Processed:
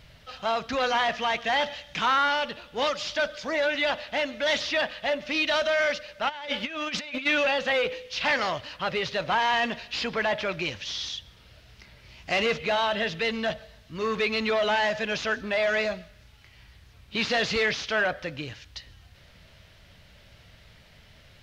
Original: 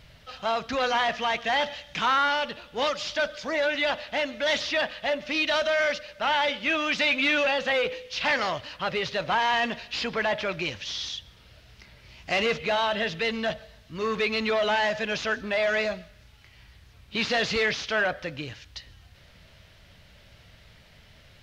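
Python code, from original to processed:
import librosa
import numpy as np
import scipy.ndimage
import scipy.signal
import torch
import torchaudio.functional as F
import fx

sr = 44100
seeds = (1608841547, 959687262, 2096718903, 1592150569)

y = fx.over_compress(x, sr, threshold_db=-30.0, ratio=-0.5, at=(6.28, 7.25), fade=0.02)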